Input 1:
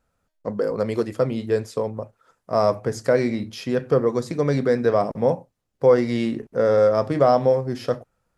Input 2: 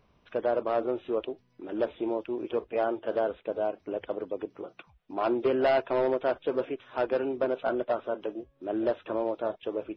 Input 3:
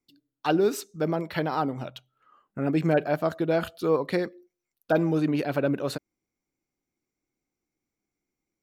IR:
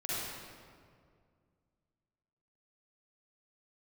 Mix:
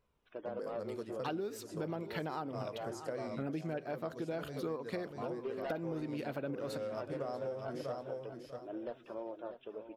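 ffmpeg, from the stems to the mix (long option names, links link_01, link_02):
-filter_complex "[0:a]highshelf=frequency=5800:gain=7,volume=-18.5dB,asplit=2[link_01][link_02];[link_02]volume=-6.5dB[link_03];[1:a]flanger=delay=2:depth=3.7:regen=52:speed=0.48:shape=sinusoidal,volume=-9.5dB,asplit=2[link_04][link_05];[link_05]volume=-12dB[link_06];[2:a]tremolo=f=3.3:d=0.33,adelay=800,volume=-1.5dB,asplit=2[link_07][link_08];[link_08]volume=-20.5dB[link_09];[link_03][link_06][link_09]amix=inputs=3:normalize=0,aecho=0:1:642|1284|1926:1|0.21|0.0441[link_10];[link_01][link_04][link_07][link_10]amix=inputs=4:normalize=0,acompressor=threshold=-35dB:ratio=12"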